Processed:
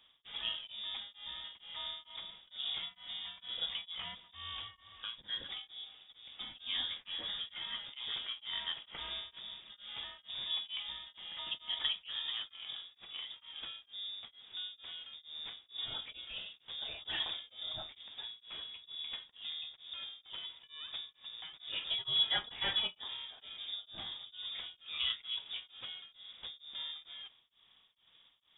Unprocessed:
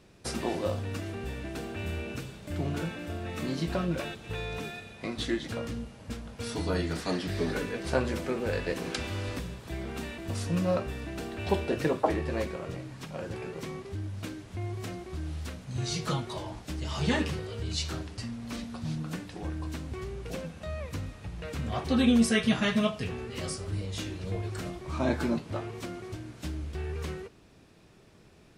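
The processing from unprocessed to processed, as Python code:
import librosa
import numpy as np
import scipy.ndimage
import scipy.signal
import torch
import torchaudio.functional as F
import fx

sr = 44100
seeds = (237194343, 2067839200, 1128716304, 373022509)

y = scipy.signal.sosfilt(scipy.signal.butter(2, 76.0, 'highpass', fs=sr, output='sos'), x)
y = fx.freq_invert(y, sr, carrier_hz=3600)
y = y * np.abs(np.cos(np.pi * 2.2 * np.arange(len(y)) / sr))
y = F.gain(torch.from_numpy(y), -6.5).numpy()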